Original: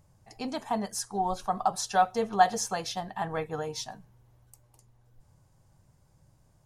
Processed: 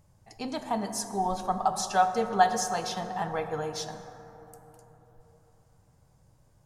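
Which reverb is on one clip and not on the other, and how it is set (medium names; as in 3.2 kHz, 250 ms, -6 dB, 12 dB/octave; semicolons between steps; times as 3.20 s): plate-style reverb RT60 3.8 s, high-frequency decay 0.3×, DRR 7.5 dB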